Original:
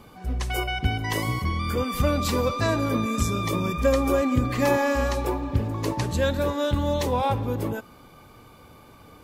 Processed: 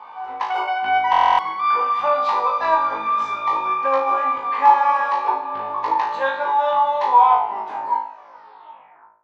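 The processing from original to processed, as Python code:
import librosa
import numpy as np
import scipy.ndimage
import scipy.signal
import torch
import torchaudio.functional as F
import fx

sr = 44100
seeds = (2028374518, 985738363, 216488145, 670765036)

y = fx.tape_stop_end(x, sr, length_s=2.1)
y = fx.highpass_res(y, sr, hz=910.0, q=10.0)
y = fx.air_absorb(y, sr, metres=260.0)
y = fx.room_flutter(y, sr, wall_m=3.2, rt60_s=0.5)
y = fx.rider(y, sr, range_db=4, speed_s=2.0)
y = fx.high_shelf(y, sr, hz=7900.0, db=-10.0)
y = fx.buffer_glitch(y, sr, at_s=(1.11,), block=1024, repeats=11)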